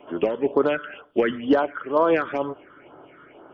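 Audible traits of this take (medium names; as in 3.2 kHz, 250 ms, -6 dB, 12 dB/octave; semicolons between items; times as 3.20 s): phasing stages 8, 2.1 Hz, lowest notch 730–2500 Hz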